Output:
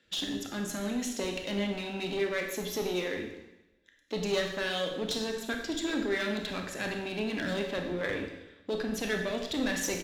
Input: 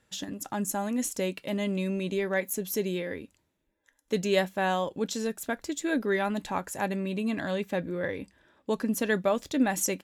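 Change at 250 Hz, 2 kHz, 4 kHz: −4.0, −0.5, +4.5 decibels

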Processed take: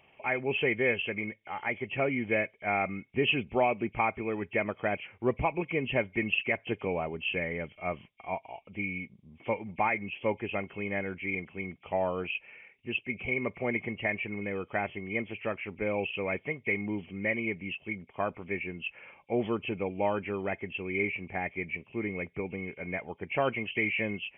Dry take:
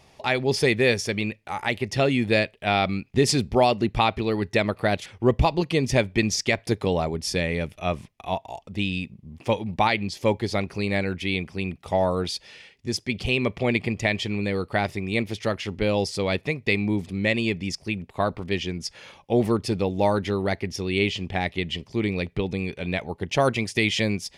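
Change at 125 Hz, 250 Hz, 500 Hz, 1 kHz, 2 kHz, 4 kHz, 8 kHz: −12.5 dB, −9.0 dB, −7.5 dB, −7.0 dB, −3.5 dB, −11.5 dB, below −40 dB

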